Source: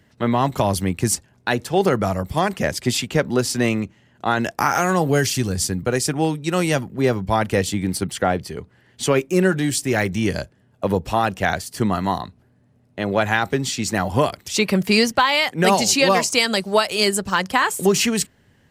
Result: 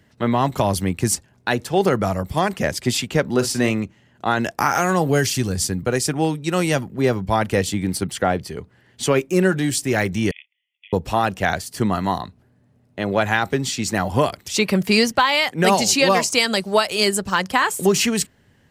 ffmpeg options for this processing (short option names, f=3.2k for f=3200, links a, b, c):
-filter_complex "[0:a]asettb=1/sr,asplit=3[a][b][c];[a]atrim=end=3.284[d];[b]atrim=start=3.28:end=3.71,asetpts=PTS-STARTPTS,afade=t=in:d=0.004:c=qsin,afade=t=out:st=0.426:d=0.004:c=qsin,asplit=2[e][f];[f]adelay=45,volume=-11dB[g];[e][g]amix=inputs=2:normalize=0,atrim=end_sample=18963[h];[c]atrim=start=3.706[i];[d][h]acrossfade=d=0.004:c1=hsin:c2=qsin[j];[j][i]acrossfade=d=0.004:c1=qsin:c2=hsin,asettb=1/sr,asplit=3[k][l][m];[k]atrim=end=10.314[n];[l]atrim=start=10.31:end=10.93,asetpts=PTS-STARTPTS,afade=t=in:d=0.004:c=qsin,afade=t=out:st=0.616:d=0.004:c=qsin,asuperpass=centerf=2600:order=20:qfactor=1.7[o];[m]atrim=start=10.926[p];[n][o]acrossfade=d=0.004:c1=hsin:c2=qsin[q];[q][p]acrossfade=d=0.004:c1=qsin:c2=hsin"